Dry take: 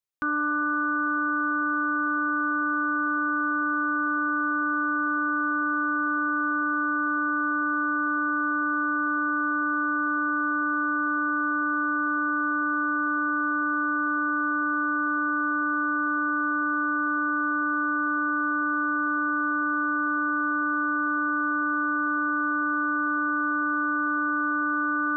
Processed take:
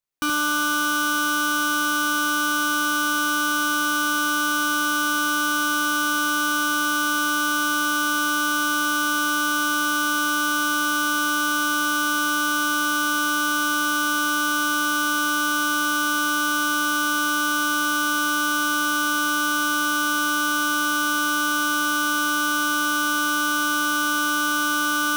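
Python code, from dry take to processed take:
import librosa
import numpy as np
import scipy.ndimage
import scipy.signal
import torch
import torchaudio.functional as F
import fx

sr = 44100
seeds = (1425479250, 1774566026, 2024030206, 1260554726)

y = fx.halfwave_hold(x, sr)
y = fx.room_early_taps(y, sr, ms=(57, 76), db=(-16.0, -3.5))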